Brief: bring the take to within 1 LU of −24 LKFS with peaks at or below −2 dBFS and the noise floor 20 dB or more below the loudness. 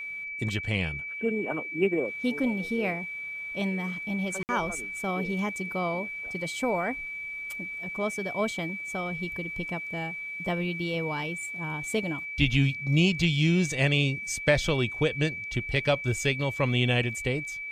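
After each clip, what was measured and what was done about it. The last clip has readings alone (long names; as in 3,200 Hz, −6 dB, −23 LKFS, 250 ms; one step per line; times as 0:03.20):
number of dropouts 1; longest dropout 59 ms; interfering tone 2,300 Hz; level of the tone −34 dBFS; integrated loudness −28.5 LKFS; sample peak −6.5 dBFS; target loudness −24.0 LKFS
→ repair the gap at 0:04.43, 59 ms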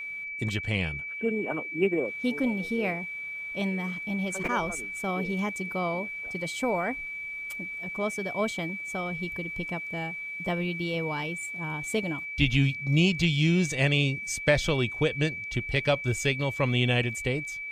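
number of dropouts 0; interfering tone 2,300 Hz; level of the tone −34 dBFS
→ notch filter 2,300 Hz, Q 30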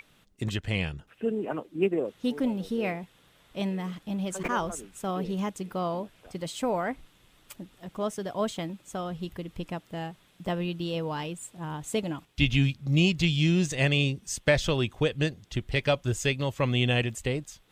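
interfering tone none found; integrated loudness −29.5 LKFS; sample peak −6.5 dBFS; target loudness −24.0 LKFS
→ level +5.5 dB
brickwall limiter −2 dBFS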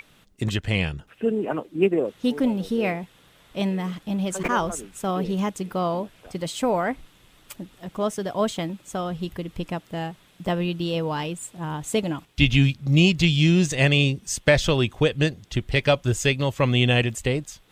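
integrated loudness −24.0 LKFS; sample peak −2.0 dBFS; background noise floor −57 dBFS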